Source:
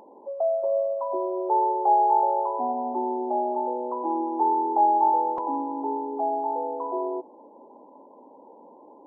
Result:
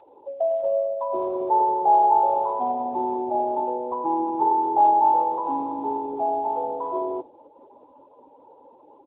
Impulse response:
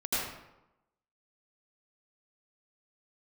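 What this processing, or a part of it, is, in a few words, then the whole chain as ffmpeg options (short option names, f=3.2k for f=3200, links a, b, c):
mobile call with aggressive noise cancelling: -filter_complex "[0:a]asplit=3[a][b][c];[a]afade=t=out:st=3.85:d=0.02[d];[b]asplit=2[e][f];[f]adelay=12,volume=-13.5dB[g];[e][g]amix=inputs=2:normalize=0,afade=t=in:st=3.85:d=0.02,afade=t=out:st=4.46:d=0.02[h];[c]afade=t=in:st=4.46:d=0.02[i];[d][h][i]amix=inputs=3:normalize=0,highpass=f=170:p=1,lowshelf=f=160:g=-5,afftdn=nr=25:nf=-44,volume=3dB" -ar 8000 -c:a libopencore_amrnb -b:a 10200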